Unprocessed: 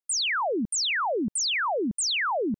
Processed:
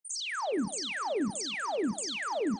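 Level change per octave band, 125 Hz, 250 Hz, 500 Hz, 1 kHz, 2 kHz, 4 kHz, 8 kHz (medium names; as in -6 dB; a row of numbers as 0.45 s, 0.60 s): -3.0 dB, -2.5 dB, -4.0 dB, -7.0 dB, -9.0 dB, -9.5 dB, -9.0 dB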